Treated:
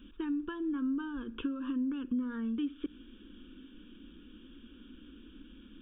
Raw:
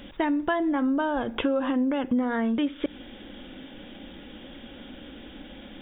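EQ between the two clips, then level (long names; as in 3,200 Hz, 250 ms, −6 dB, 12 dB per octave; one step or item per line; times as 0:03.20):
high-shelf EQ 2,300 Hz −11 dB
phaser with its sweep stopped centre 320 Hz, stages 4
phaser with its sweep stopped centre 3,000 Hz, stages 8
−4.5 dB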